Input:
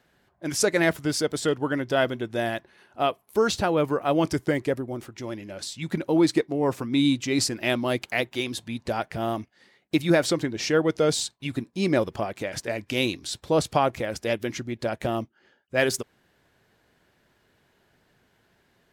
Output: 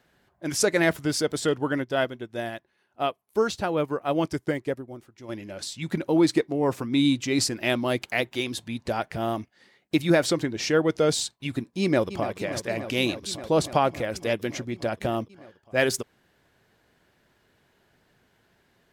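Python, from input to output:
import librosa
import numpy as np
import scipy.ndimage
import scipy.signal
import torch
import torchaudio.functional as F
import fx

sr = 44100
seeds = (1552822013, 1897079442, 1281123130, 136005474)

y = fx.upward_expand(x, sr, threshold_db=-43.0, expansion=1.5, at=(1.83, 5.28), fade=0.02)
y = fx.echo_throw(y, sr, start_s=11.81, length_s=0.54, ms=290, feedback_pct=85, wet_db=-12.0)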